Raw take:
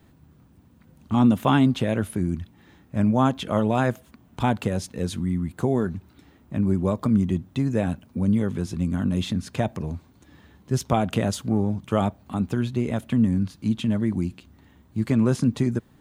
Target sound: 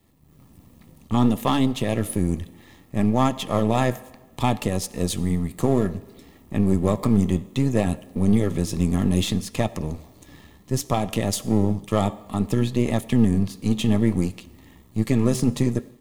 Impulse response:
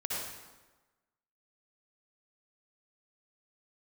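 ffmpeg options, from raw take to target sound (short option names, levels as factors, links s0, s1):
-filter_complex "[0:a]aeval=exprs='if(lt(val(0),0),0.447*val(0),val(0))':c=same,aemphasis=mode=production:type=cd,asplit=2[s0][s1];[s1]highpass=180[s2];[1:a]atrim=start_sample=2205[s3];[s2][s3]afir=irnorm=-1:irlink=0,volume=0.0794[s4];[s0][s4]amix=inputs=2:normalize=0,dynaudnorm=f=220:g=3:m=3.76,flanger=delay=3.4:depth=8.4:regen=-81:speed=0.62:shape=sinusoidal,asuperstop=centerf=1500:order=8:qfactor=6.2"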